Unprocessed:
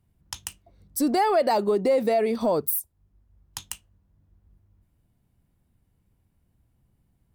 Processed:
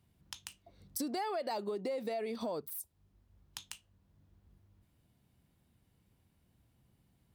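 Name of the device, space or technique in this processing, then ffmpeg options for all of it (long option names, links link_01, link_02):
broadcast voice chain: -af "highpass=frequency=110:poles=1,deesser=0.4,acompressor=threshold=-38dB:ratio=4,equalizer=frequency=3700:width_type=o:width=1.4:gain=5.5,alimiter=limit=-22.5dB:level=0:latency=1:release=382"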